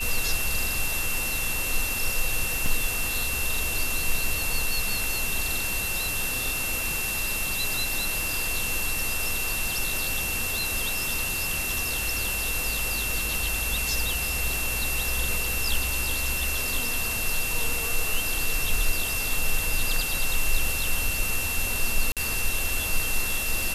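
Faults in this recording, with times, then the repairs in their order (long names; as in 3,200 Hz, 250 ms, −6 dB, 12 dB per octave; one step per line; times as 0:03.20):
whistle 2,700 Hz −30 dBFS
0:02.66: drop-out 2.5 ms
0:22.12–0:22.17: drop-out 47 ms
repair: notch filter 2,700 Hz, Q 30
repair the gap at 0:02.66, 2.5 ms
repair the gap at 0:22.12, 47 ms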